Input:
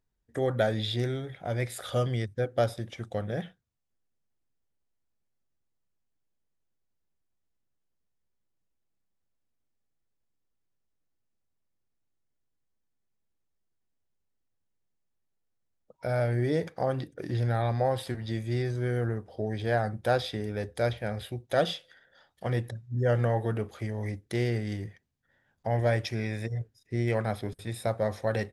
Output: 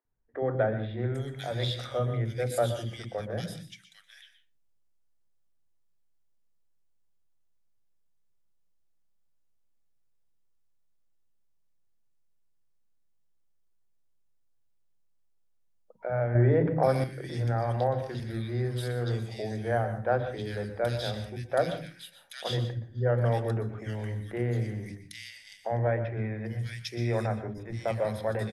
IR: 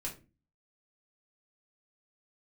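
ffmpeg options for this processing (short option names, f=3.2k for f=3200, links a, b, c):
-filter_complex "[0:a]bandreject=f=50:t=h:w=6,bandreject=f=100:t=h:w=6,bandreject=f=150:t=h:w=6,bandreject=f=200:t=h:w=6,bandreject=f=250:t=h:w=6,bandreject=f=300:t=h:w=6,acrossover=split=300|2100[a][b][c];[a]adelay=50[d];[c]adelay=800[e];[d][b][e]amix=inputs=3:normalize=0,asplit=2[f][g];[1:a]atrim=start_sample=2205,adelay=120[h];[g][h]afir=irnorm=-1:irlink=0,volume=-10dB[i];[f][i]amix=inputs=2:normalize=0,asettb=1/sr,asplit=3[j][k][l];[j]atrim=end=16.354[m];[k]atrim=start=16.35:end=17.04,asetpts=PTS-STARTPTS,afade=t=in:d=0.004:c=qsin,afade=t=out:st=0.686:d=0.004:c=qsin,acontrast=36[n];[l]atrim=start=17.036[o];[m][n]acrossfade=d=0.004:c1=hsin:c2=qsin[p];[p][o]acrossfade=d=0.004:c1=qsin:c2=hsin"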